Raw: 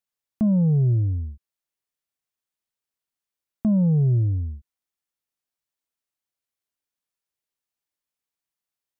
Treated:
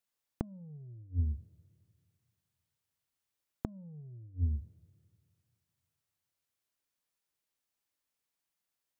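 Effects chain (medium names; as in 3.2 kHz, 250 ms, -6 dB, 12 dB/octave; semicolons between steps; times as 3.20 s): two-slope reverb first 0.51 s, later 2.3 s, from -25 dB, DRR 14.5 dB; inverted gate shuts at -19 dBFS, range -31 dB; trim +1 dB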